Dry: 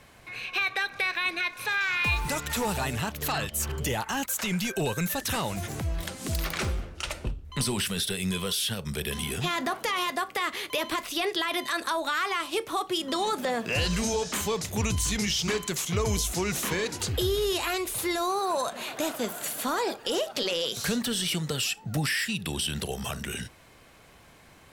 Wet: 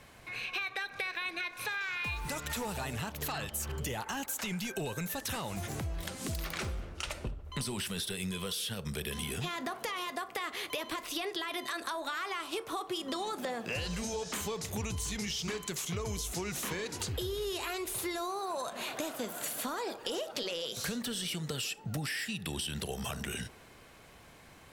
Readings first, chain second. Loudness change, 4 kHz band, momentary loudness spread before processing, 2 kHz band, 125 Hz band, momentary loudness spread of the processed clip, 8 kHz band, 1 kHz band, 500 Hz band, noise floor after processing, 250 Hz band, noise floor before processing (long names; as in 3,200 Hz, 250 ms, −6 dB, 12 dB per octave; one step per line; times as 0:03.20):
−7.5 dB, −7.5 dB, 6 LU, −8.0 dB, −7.0 dB, 3 LU, −7.0 dB, −8.0 dB, −8.0 dB, −55 dBFS, −7.5 dB, −54 dBFS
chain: downward compressor 5 to 1, threshold −32 dBFS, peak gain reduction 10 dB
on a send: delay with a band-pass on its return 73 ms, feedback 84%, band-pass 630 Hz, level −19 dB
on the sum: level −1.5 dB